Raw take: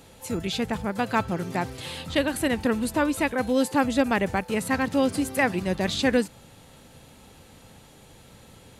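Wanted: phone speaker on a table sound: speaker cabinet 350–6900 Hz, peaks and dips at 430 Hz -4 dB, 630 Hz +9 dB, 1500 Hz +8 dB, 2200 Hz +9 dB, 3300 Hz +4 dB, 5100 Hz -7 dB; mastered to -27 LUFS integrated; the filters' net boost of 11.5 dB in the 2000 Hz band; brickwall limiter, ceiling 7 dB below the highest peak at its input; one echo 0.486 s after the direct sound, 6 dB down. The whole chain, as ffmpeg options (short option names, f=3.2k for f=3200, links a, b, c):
-af "equalizer=f=2k:t=o:g=5.5,alimiter=limit=-14.5dB:level=0:latency=1,highpass=f=350:w=0.5412,highpass=f=350:w=1.3066,equalizer=f=430:t=q:w=4:g=-4,equalizer=f=630:t=q:w=4:g=9,equalizer=f=1.5k:t=q:w=4:g=8,equalizer=f=2.2k:t=q:w=4:g=9,equalizer=f=3.3k:t=q:w=4:g=4,equalizer=f=5.1k:t=q:w=4:g=-7,lowpass=f=6.9k:w=0.5412,lowpass=f=6.9k:w=1.3066,aecho=1:1:486:0.501,volume=-4dB"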